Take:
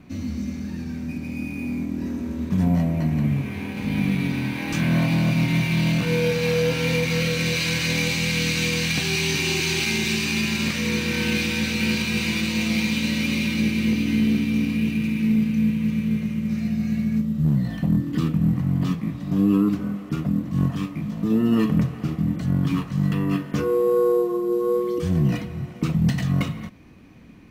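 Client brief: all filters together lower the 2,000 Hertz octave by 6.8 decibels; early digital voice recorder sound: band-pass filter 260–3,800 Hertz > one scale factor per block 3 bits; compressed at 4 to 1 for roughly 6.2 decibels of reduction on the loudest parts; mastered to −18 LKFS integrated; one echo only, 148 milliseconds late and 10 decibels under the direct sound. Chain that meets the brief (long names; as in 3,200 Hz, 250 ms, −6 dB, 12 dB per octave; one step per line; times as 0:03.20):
parametric band 2,000 Hz −8 dB
downward compressor 4 to 1, threshold −23 dBFS
band-pass filter 260–3,800 Hz
single-tap delay 148 ms −10 dB
one scale factor per block 3 bits
level +12.5 dB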